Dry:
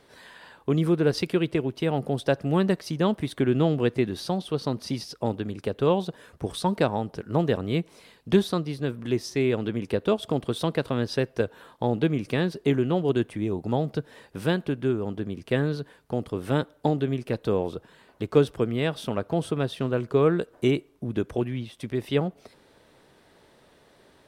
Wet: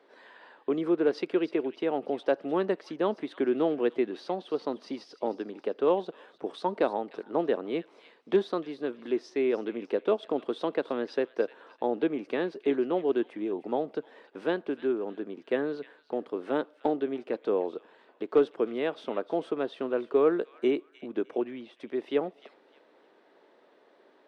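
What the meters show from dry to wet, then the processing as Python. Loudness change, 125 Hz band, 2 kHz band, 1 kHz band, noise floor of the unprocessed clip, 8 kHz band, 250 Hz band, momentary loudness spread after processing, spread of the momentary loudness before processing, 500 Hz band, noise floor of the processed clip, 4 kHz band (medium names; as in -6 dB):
-3.5 dB, -22.0 dB, -5.0 dB, -2.5 dB, -59 dBFS, under -15 dB, -5.0 dB, 9 LU, 8 LU, -1.5 dB, -62 dBFS, -9.5 dB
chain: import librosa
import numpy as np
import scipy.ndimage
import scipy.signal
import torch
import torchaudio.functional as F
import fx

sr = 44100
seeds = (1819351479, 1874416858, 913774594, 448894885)

p1 = scipy.signal.sosfilt(scipy.signal.butter(4, 290.0, 'highpass', fs=sr, output='sos'), x)
p2 = np.clip(p1, -10.0 ** (-13.0 / 20.0), 10.0 ** (-13.0 / 20.0))
p3 = fx.spacing_loss(p2, sr, db_at_10k=27)
y = p3 + fx.echo_wet_highpass(p3, sr, ms=304, feedback_pct=31, hz=2000.0, wet_db=-13, dry=0)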